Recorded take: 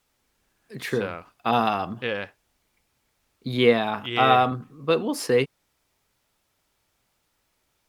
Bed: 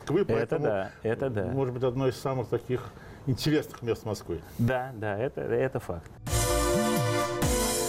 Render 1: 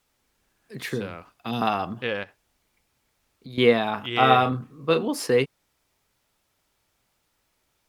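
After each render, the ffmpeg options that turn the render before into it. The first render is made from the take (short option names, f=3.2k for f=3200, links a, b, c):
-filter_complex "[0:a]asettb=1/sr,asplit=3[a][b][c];[a]atrim=end=0.874[d];[b]atrim=start=0.87:end=1.62,asetpts=PTS-STARTPTS,afade=t=in:d=0.004:c=qsin,afade=t=out:st=0.746:d=0.004:c=qsin,acrossover=split=350|3000[e][f][g];[f]acompressor=threshold=-34dB:ratio=6:attack=3.2:release=140:knee=2.83:detection=peak[h];[e][h][g]amix=inputs=3:normalize=0[i];[c]atrim=start=1.616[j];[d][i]acrossfade=d=0.004:c1=hsin:c2=qsin[k];[k][j]acrossfade=d=0.004:c1=qsin:c2=hsin,asettb=1/sr,asplit=3[l][m][n];[l]atrim=end=2.234[o];[m]atrim=start=2.23:end=3.58,asetpts=PTS-STARTPTS,afade=t=in:d=0.004:c=qsin,afade=t=out:st=1.346:d=0.004:c=qsin,acompressor=threshold=-42dB:ratio=2.5:attack=3.2:release=140:knee=1:detection=peak[p];[n]atrim=start=3.576[q];[o][p]acrossfade=d=0.004:c1=hsin:c2=qsin[r];[r][q]acrossfade=d=0.004:c1=qsin:c2=hsin,asettb=1/sr,asplit=3[s][t][u];[s]atrim=end=4.194[v];[t]atrim=start=4.19:end=5.08,asetpts=PTS-STARTPTS,afade=t=in:d=0.004:c=qsin,afade=t=out:st=0.886:d=0.004:c=qsin,asplit=2[w][x];[x]adelay=31,volume=-8.5dB[y];[w][y]amix=inputs=2:normalize=0,atrim=end_sample=39249[z];[u]atrim=start=5.076[aa];[v][z]acrossfade=d=0.004:c1=hsin:c2=qsin[ab];[ab][aa]acrossfade=d=0.004:c1=qsin:c2=hsin"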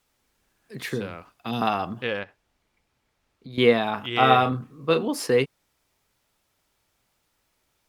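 -filter_complex "[0:a]asettb=1/sr,asplit=3[a][b][c];[a]atrim=end=2.194[d];[b]atrim=start=2.19:end=3.54,asetpts=PTS-STARTPTS,afade=t=in:d=0.004:c=qsin,afade=t=out:st=1.346:d=0.004:c=qsin,lowpass=f=3.7k:p=1[e];[c]atrim=start=3.536[f];[d][e]acrossfade=d=0.004:c1=hsin:c2=qsin[g];[g][f]acrossfade=d=0.004:c1=qsin:c2=hsin"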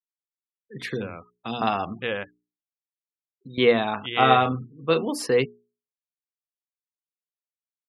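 -af "afftfilt=real='re*gte(hypot(re,im),0.0112)':imag='im*gte(hypot(re,im),0.0112)':win_size=1024:overlap=0.75,bandreject=f=60:t=h:w=6,bandreject=f=120:t=h:w=6,bandreject=f=180:t=h:w=6,bandreject=f=240:t=h:w=6,bandreject=f=300:t=h:w=6,bandreject=f=360:t=h:w=6,bandreject=f=420:t=h:w=6"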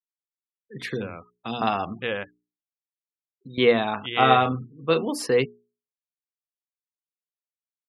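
-af anull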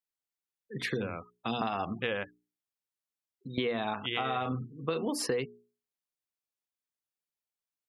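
-af "alimiter=limit=-14.5dB:level=0:latency=1:release=143,acompressor=threshold=-28dB:ratio=6"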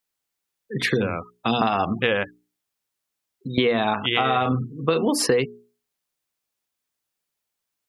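-af "volume=11dB"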